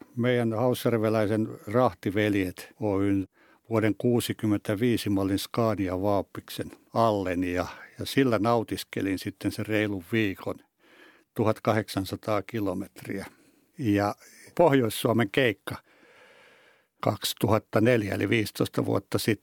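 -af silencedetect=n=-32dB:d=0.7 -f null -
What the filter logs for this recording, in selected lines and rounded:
silence_start: 10.52
silence_end: 11.37 | silence_duration: 0.85
silence_start: 15.75
silence_end: 17.03 | silence_duration: 1.28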